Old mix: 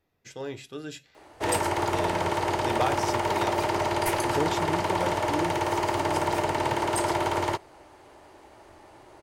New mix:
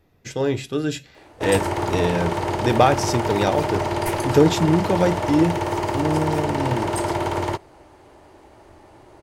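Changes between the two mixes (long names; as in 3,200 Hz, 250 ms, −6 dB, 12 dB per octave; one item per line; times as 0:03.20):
speech +10.0 dB
master: add low-shelf EQ 400 Hz +7.5 dB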